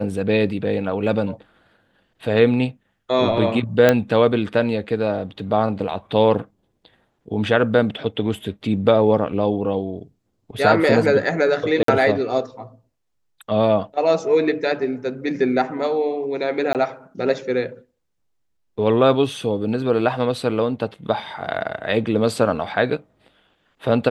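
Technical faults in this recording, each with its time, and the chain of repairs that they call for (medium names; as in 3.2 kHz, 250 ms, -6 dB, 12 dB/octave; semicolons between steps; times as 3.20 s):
3.89 s: pop -2 dBFS
11.83–11.88 s: dropout 53 ms
16.73–16.75 s: dropout 18 ms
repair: de-click; interpolate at 11.83 s, 53 ms; interpolate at 16.73 s, 18 ms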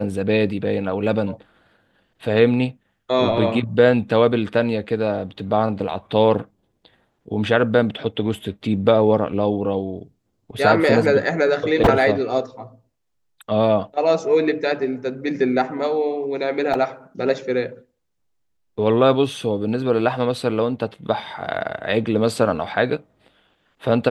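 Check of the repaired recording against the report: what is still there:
nothing left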